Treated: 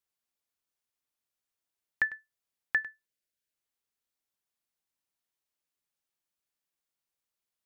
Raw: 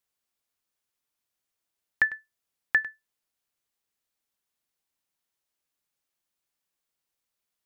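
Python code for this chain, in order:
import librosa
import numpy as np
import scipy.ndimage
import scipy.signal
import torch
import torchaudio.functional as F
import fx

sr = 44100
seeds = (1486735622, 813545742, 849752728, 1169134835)

y = fx.spec_erase(x, sr, start_s=3.06, length_s=0.48, low_hz=680.0, high_hz=1400.0)
y = y * librosa.db_to_amplitude(-5.0)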